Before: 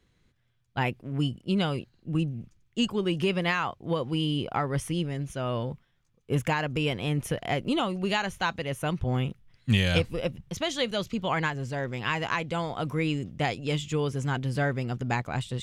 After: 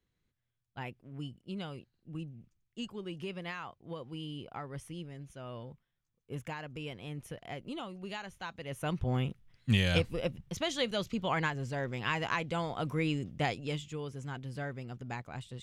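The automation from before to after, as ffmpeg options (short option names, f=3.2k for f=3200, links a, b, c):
-af "volume=-4dB,afade=t=in:st=8.53:d=0.43:silence=0.316228,afade=t=out:st=13.49:d=0.42:silence=0.398107"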